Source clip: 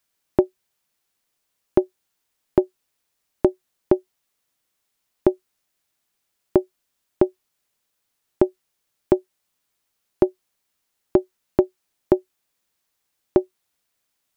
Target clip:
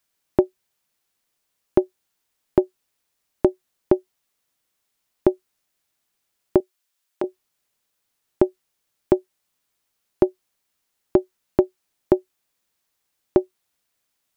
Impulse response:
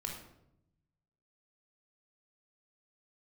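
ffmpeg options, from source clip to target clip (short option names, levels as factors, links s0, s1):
-filter_complex "[0:a]asettb=1/sr,asplit=3[s0][s1][s2];[s0]atrim=end=6.604[s3];[s1]atrim=start=6.6:end=7.24,asetpts=PTS-STARTPTS,afade=t=in:d=0.004:c=qsin,afade=t=out:st=0.636:d=0.004:c=qsin,highpass=f=1100:p=1[s4];[s2]atrim=start=7.236[s5];[s3][s4]acrossfade=d=0.004:c1=hsin:c2=qsin[s6];[s6][s5]acrossfade=d=0.004:c1=qsin:c2=hsin"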